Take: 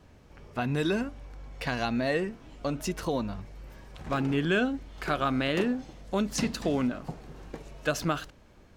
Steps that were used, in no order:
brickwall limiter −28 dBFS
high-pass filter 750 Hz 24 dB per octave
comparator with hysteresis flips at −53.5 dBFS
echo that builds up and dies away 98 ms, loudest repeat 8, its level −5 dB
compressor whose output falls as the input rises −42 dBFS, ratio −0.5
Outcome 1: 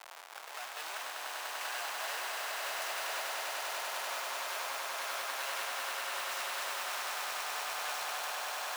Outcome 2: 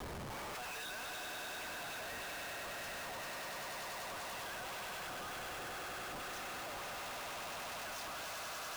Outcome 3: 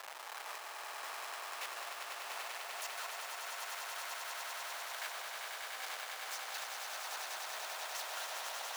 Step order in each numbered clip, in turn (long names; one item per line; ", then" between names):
brickwall limiter, then comparator with hysteresis, then high-pass filter, then compressor whose output falls as the input rises, then echo that builds up and dies away
high-pass filter, then brickwall limiter, then echo that builds up and dies away, then compressor whose output falls as the input rises, then comparator with hysteresis
compressor whose output falls as the input rises, then comparator with hysteresis, then echo that builds up and dies away, then brickwall limiter, then high-pass filter